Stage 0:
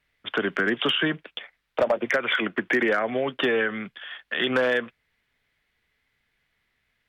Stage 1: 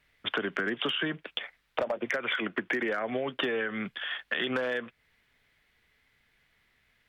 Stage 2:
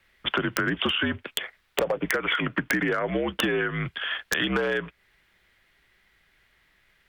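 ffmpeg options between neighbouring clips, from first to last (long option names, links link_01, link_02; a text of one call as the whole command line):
ffmpeg -i in.wav -af "acompressor=threshold=-32dB:ratio=6,volume=4dB" out.wav
ffmpeg -i in.wav -af "afreqshift=-61,aeval=exprs='(mod(6.68*val(0)+1,2)-1)/6.68':channel_layout=same,volume=5dB" out.wav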